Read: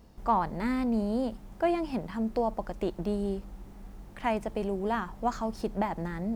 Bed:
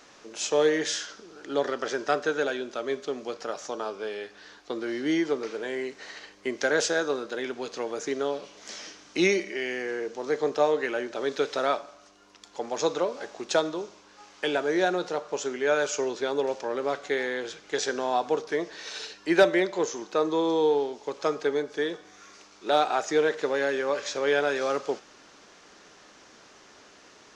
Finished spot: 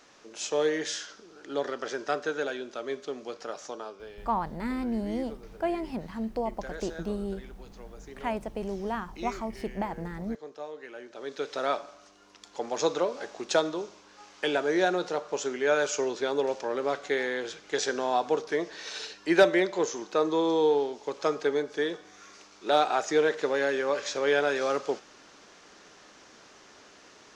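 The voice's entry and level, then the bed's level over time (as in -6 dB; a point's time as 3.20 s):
4.00 s, -2.5 dB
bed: 3.68 s -4 dB
4.37 s -17 dB
10.74 s -17 dB
11.83 s -0.5 dB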